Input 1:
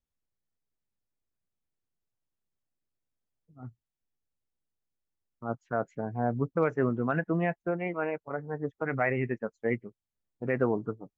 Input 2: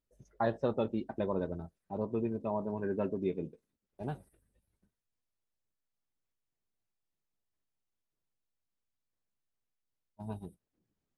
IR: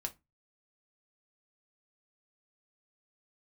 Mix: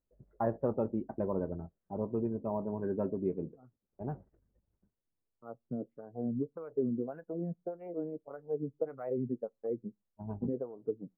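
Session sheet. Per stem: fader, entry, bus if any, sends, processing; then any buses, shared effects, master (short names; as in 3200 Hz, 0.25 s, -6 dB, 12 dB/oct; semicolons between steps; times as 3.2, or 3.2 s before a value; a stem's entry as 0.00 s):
-2.0 dB, 0.00 s, send -22.5 dB, graphic EQ 125/250/500/1000/2000 Hz +10/+5/+10/-9/-12 dB; compressor 6:1, threshold -23 dBFS, peak gain reduction 10 dB; wah 1.7 Hz 210–1300 Hz, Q 2.6
+0.5 dB, 0.00 s, no send, Bessel low-pass 1100 Hz, order 4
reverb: on, RT60 0.20 s, pre-delay 4 ms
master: high shelf 3700 Hz -9 dB; decimation joined by straight lines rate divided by 3×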